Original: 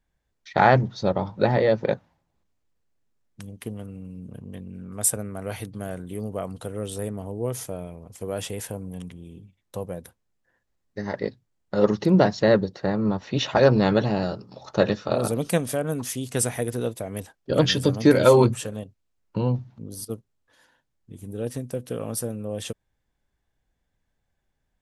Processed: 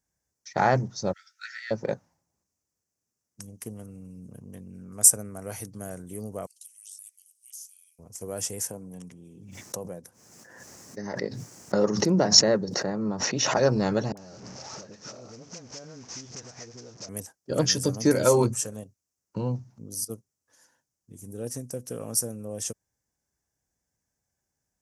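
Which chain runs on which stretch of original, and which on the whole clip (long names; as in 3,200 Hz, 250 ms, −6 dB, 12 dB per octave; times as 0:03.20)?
0:01.13–0:01.71: linear-phase brick-wall high-pass 1,300 Hz + double-tracking delay 12 ms −7 dB
0:06.46–0:07.99: Butterworth high-pass 2,800 Hz + downward compressor 12 to 1, threshold −44 dBFS
0:08.70–0:13.57: high-pass filter 130 Hz + high-shelf EQ 7,200 Hz −10 dB + background raised ahead of every attack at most 34 dB per second
0:14.12–0:17.09: linear delta modulator 32 kbit/s, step −31.5 dBFS + downward compressor 20 to 1, threshold −35 dBFS + all-pass dispersion highs, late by 54 ms, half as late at 710 Hz
whole clip: high-pass filter 73 Hz; high shelf with overshoot 4,600 Hz +8.5 dB, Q 3; level −5 dB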